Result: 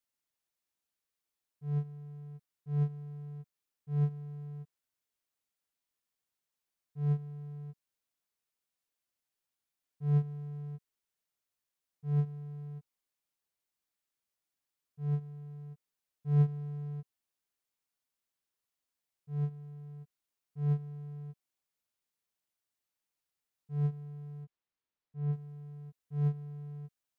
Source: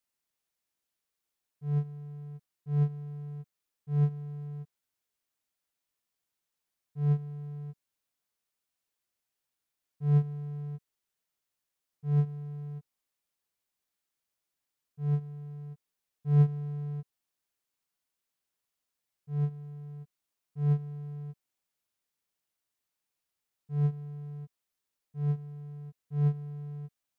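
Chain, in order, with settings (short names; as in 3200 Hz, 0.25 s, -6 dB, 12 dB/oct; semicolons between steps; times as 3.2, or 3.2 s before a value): 24.44–25.33 air absorption 160 m; gain -3.5 dB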